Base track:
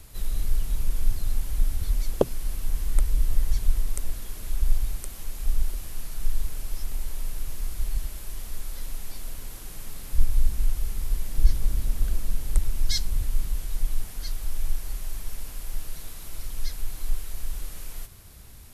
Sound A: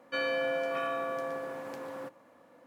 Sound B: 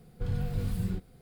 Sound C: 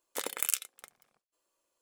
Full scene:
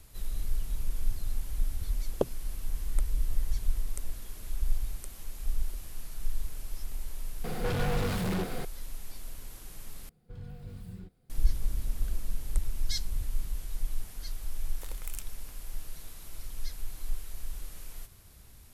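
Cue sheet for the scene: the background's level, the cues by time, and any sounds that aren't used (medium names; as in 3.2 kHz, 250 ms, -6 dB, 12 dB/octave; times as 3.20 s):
base track -6.5 dB
7.44 s: add B -5 dB + overdrive pedal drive 42 dB, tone 2.4 kHz, clips at -18.5 dBFS
10.09 s: replace with B -12.5 dB
14.65 s: add C -14 dB
not used: A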